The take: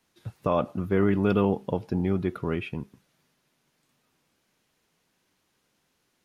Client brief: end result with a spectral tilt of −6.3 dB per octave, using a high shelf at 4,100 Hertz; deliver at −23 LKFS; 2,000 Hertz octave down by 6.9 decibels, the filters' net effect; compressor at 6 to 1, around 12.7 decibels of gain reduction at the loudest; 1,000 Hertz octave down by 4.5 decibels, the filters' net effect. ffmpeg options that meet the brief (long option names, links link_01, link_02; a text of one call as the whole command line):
ffmpeg -i in.wav -af "equalizer=frequency=1000:width_type=o:gain=-3.5,equalizer=frequency=2000:width_type=o:gain=-6.5,highshelf=frequency=4100:gain=-8,acompressor=threshold=-32dB:ratio=6,volume=15dB" out.wav